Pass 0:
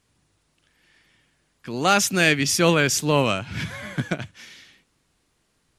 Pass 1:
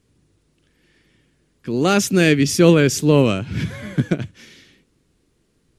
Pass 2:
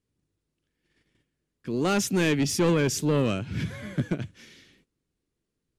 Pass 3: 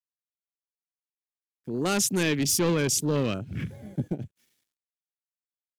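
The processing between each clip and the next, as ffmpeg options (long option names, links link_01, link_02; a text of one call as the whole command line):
ffmpeg -i in.wav -af "lowshelf=frequency=560:width_type=q:width=1.5:gain=8,volume=-1dB" out.wav
ffmpeg -i in.wav -af "asoftclip=type=tanh:threshold=-10.5dB,agate=range=-12dB:threshold=-57dB:ratio=16:detection=peak,volume=-6dB" out.wav
ffmpeg -i in.wav -af "aeval=exprs='sgn(val(0))*max(abs(val(0))-0.00224,0)':channel_layout=same,aemphasis=mode=production:type=50fm,afwtdn=0.0141,volume=-1.5dB" out.wav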